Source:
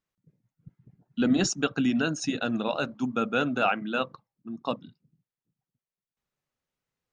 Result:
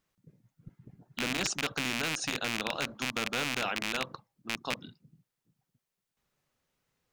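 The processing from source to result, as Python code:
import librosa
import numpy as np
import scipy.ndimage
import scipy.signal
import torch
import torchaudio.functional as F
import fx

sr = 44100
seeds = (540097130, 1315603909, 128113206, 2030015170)

y = fx.rattle_buzz(x, sr, strikes_db=-36.0, level_db=-15.0)
y = fx.spectral_comp(y, sr, ratio=2.0)
y = y * librosa.db_to_amplitude(-3.5)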